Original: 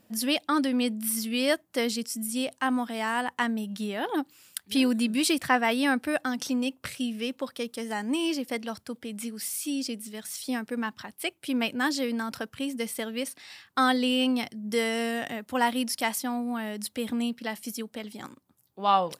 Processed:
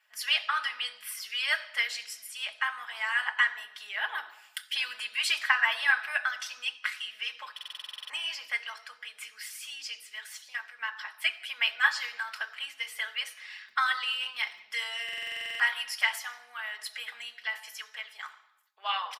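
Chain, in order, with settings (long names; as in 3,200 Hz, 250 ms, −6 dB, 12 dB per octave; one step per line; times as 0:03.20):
high-pass filter 1,200 Hz 24 dB per octave
high-shelf EQ 3,800 Hz −10.5 dB
0:10.37–0:10.79: output level in coarse steps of 14 dB
0:13.65–0:14.58: surface crackle 79 per second −53 dBFS
comb filter 4.7 ms, depth 78%
convolution reverb RT60 0.85 s, pre-delay 3 ms, DRR 5 dB
harmonic and percussive parts rebalanced harmonic −8 dB
buffer that repeats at 0:07.54/0:15.04, samples 2,048, times 11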